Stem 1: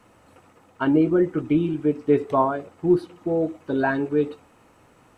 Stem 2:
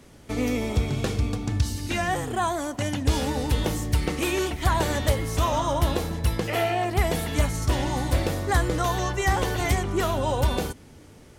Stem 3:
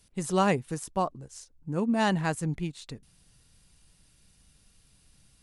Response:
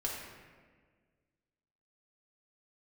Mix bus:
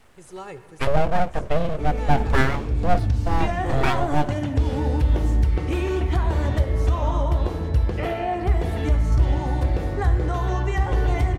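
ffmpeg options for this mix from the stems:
-filter_complex "[0:a]aeval=exprs='abs(val(0))':c=same,volume=2dB[a];[1:a]lowpass=f=1.6k:p=1,acompressor=threshold=-28dB:ratio=6,adelay=1500,volume=0dB,asplit=2[b][c];[c]volume=-3dB[d];[2:a]aecho=1:1:2.3:0.75,volume=-16.5dB,asplit=3[e][f][g];[f]volume=-10.5dB[h];[g]apad=whole_len=568197[i];[b][i]sidechaincompress=threshold=-58dB:ratio=8:attack=16:release=201[j];[3:a]atrim=start_sample=2205[k];[d][h]amix=inputs=2:normalize=0[l];[l][k]afir=irnorm=-1:irlink=0[m];[a][j][e][m]amix=inputs=4:normalize=0,equalizer=f=60:w=0.81:g=9"

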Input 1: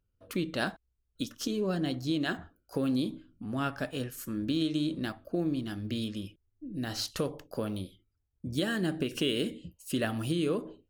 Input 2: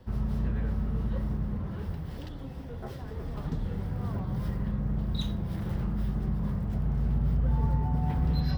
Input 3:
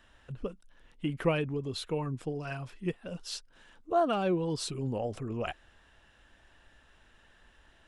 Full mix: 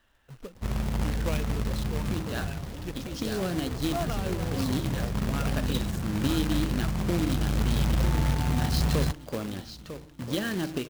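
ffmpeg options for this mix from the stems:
-filter_complex "[0:a]adelay=1750,volume=0dB,asplit=2[a][b];[b]volume=-9.5dB[c];[1:a]adelay=550,volume=0.5dB,asplit=2[d][e];[e]volume=-24dB[f];[2:a]volume=-6.5dB,asplit=2[g][h];[h]apad=whole_len=557426[i];[a][i]sidechaincompress=threshold=-44dB:ratio=8:attack=48:release=180[j];[c][f]amix=inputs=2:normalize=0,aecho=0:1:950|1900|2850|3800|4750:1|0.35|0.122|0.0429|0.015[k];[j][d][g][k]amix=inputs=4:normalize=0,lowpass=5.7k,acrusher=bits=2:mode=log:mix=0:aa=0.000001"

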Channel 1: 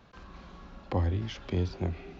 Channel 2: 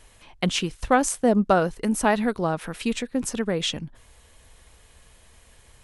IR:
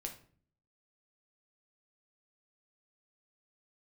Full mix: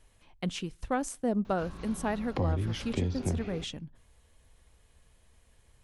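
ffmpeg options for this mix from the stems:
-filter_complex "[0:a]highshelf=f=5.4k:g=9,acompressor=threshold=-31dB:ratio=6,adelay=1450,volume=-2dB,asplit=2[a][b];[b]volume=-7dB[c];[1:a]volume=-13.5dB,asplit=2[d][e];[e]volume=-23dB[f];[2:a]atrim=start_sample=2205[g];[c][f]amix=inputs=2:normalize=0[h];[h][g]afir=irnorm=-1:irlink=0[i];[a][d][i]amix=inputs=3:normalize=0,lowshelf=f=420:g=6"

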